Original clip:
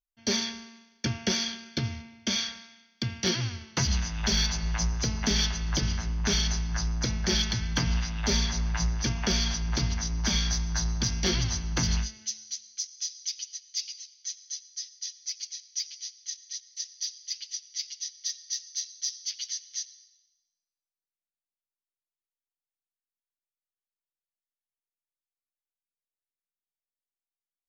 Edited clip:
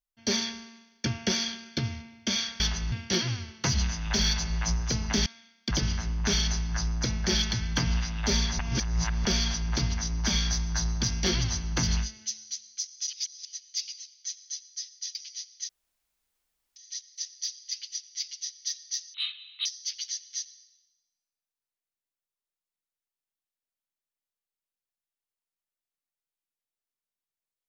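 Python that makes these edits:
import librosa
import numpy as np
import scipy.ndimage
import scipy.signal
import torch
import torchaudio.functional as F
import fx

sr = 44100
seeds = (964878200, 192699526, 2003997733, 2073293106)

y = fx.edit(x, sr, fx.swap(start_s=2.6, length_s=0.45, other_s=5.39, other_length_s=0.32),
    fx.reverse_span(start_s=8.59, length_s=0.66),
    fx.reverse_span(start_s=13.07, length_s=0.38),
    fx.cut(start_s=15.15, length_s=0.66),
    fx.insert_room_tone(at_s=16.35, length_s=1.07),
    fx.speed_span(start_s=18.73, length_s=0.33, speed=0.64), tone=tone)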